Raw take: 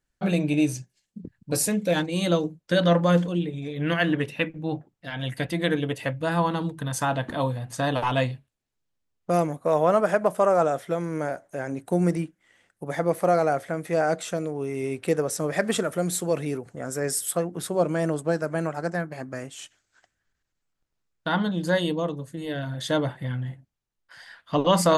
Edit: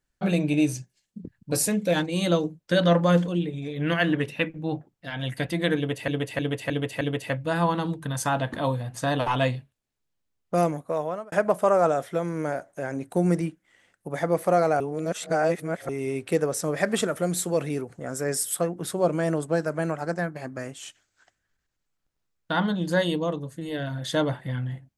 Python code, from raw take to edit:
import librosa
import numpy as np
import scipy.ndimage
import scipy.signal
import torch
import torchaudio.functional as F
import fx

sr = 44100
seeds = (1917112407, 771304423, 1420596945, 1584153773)

y = fx.edit(x, sr, fx.repeat(start_s=5.77, length_s=0.31, count=5),
    fx.fade_out_span(start_s=9.41, length_s=0.67),
    fx.reverse_span(start_s=13.56, length_s=1.09), tone=tone)